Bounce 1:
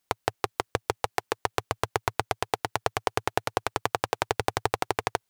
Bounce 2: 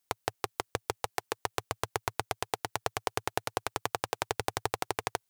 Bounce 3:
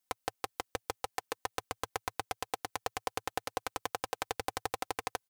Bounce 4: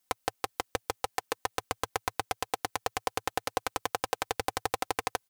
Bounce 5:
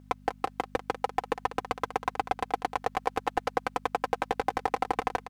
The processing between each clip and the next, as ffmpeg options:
-af "highshelf=f=4.9k:g=7,volume=-6dB"
-af "aecho=1:1:3.9:0.59,volume=-5dB"
-af "alimiter=limit=-14dB:level=0:latency=1,volume=6.5dB"
-filter_complex "[0:a]aeval=exprs='val(0)+0.00355*(sin(2*PI*50*n/s)+sin(2*PI*2*50*n/s)/2+sin(2*PI*3*50*n/s)/3+sin(2*PI*4*50*n/s)/4+sin(2*PI*5*50*n/s)/5)':c=same,aecho=1:1:195:0.126,asplit=2[a][b];[b]highpass=f=720:p=1,volume=20dB,asoftclip=type=tanh:threshold=-7dB[c];[a][c]amix=inputs=2:normalize=0,lowpass=f=1.1k:p=1,volume=-6dB,volume=-1.5dB"

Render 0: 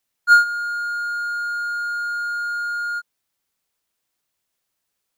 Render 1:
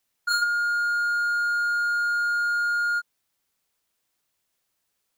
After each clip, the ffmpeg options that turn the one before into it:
-af "afftfilt=real='re*lt(hypot(re,im),1.78)':imag='im*lt(hypot(re,im),1.78)':win_size=1024:overlap=0.75,volume=1dB"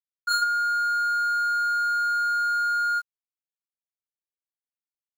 -af "acrusher=bits=8:mix=0:aa=0.000001"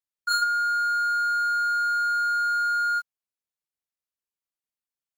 -ar 48000 -c:a ac3 -b:a 96k

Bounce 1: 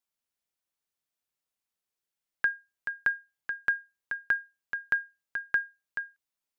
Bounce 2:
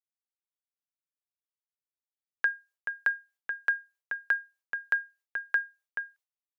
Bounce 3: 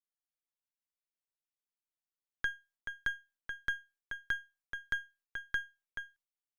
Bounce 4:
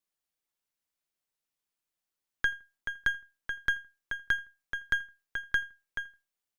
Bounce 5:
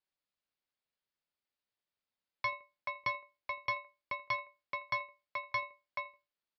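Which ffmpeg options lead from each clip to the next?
-af "highpass=f=410:w=0.5412,highpass=f=410:w=1.3066,agate=range=-33dB:threshold=-56dB:ratio=3:detection=peak"
-af "aeval=exprs='if(lt(val(0),0),0.447*val(0),val(0))':c=same,volume=-5dB"
-filter_complex "[0:a]asplit=2[a][b];[b]adelay=82,lowpass=f=2k:p=1,volume=-23.5dB,asplit=2[c][d];[d]adelay=82,lowpass=f=2k:p=1,volume=0.33[e];[a][c][e]amix=inputs=3:normalize=0,volume=6dB"
-af "aeval=exprs='val(0)*sin(2*PI*580*n/s)':c=same,aresample=11025,asoftclip=type=tanh:threshold=-27dB,aresample=44100,volume=1dB"

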